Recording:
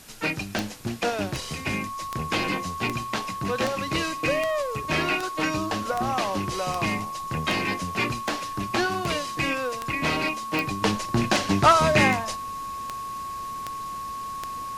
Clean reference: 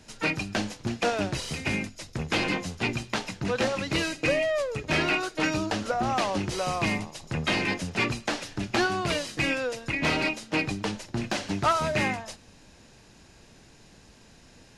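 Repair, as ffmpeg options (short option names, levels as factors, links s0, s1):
-af "adeclick=t=4,bandreject=f=1100:w=30,afwtdn=0.004,asetnsamples=n=441:p=0,asendcmd='10.82 volume volume -7dB',volume=1"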